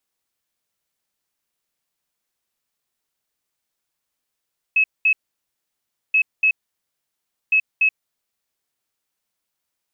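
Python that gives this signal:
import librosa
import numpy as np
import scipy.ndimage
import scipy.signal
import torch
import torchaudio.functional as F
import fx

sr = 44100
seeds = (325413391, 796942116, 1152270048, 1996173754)

y = fx.beep_pattern(sr, wave='sine', hz=2580.0, on_s=0.08, off_s=0.21, beeps=2, pause_s=1.01, groups=3, level_db=-12.5)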